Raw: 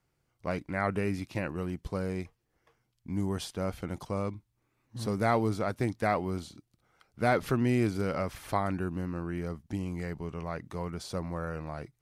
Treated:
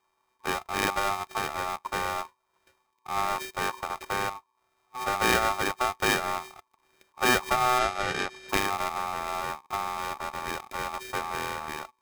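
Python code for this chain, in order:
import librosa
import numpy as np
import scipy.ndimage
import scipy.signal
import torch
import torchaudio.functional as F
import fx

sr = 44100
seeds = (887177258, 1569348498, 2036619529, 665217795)

y = np.r_[np.sort(x[:len(x) // 32 * 32].reshape(-1, 32), axis=1).ravel(), x[len(x) // 32 * 32:]]
y = fx.bandpass_edges(y, sr, low_hz=170.0, high_hz=fx.line((7.78, 7900.0), (8.48, 5400.0)), at=(7.78, 8.48), fade=0.02)
y = y * np.sin(2.0 * np.pi * 1000.0 * np.arange(len(y)) / sr)
y = y * librosa.db_to_amplitude(5.5)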